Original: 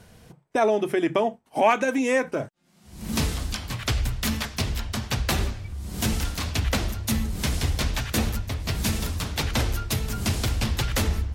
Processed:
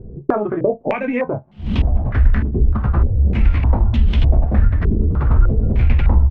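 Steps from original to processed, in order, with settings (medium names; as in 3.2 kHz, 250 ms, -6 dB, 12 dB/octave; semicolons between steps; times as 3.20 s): in parallel at -11 dB: companded quantiser 4-bit; on the sum: compression 2.5:1, threshold -29 dBFS, peak gain reduction 11.5 dB; on a send: flutter echo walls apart 4.9 m, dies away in 0.28 s; on the sum: tempo 1.8×; tilt EQ -3.5 dB/octave; step-sequenced low-pass 3.3 Hz 380–3100 Hz; trim +2 dB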